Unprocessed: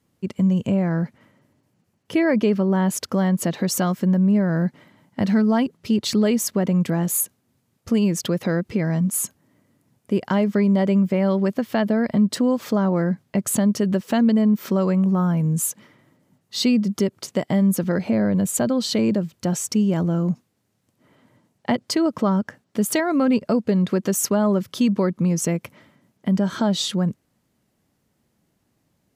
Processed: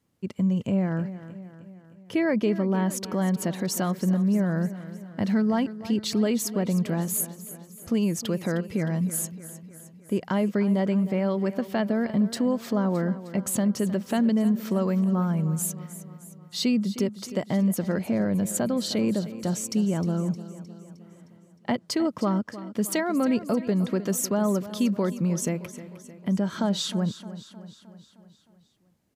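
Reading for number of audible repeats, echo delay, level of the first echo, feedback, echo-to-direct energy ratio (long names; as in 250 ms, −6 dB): 5, 309 ms, −14.5 dB, 56%, −13.0 dB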